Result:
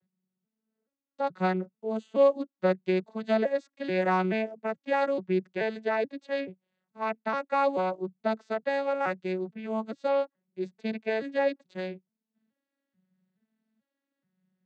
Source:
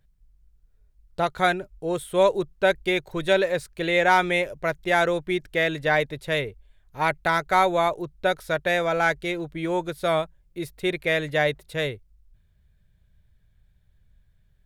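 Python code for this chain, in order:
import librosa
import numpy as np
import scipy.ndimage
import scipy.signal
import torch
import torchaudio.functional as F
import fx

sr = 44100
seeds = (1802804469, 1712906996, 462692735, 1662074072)

y = fx.vocoder_arp(x, sr, chord='minor triad', root=54, every_ms=431)
y = y * 10.0 ** (-4.0 / 20.0)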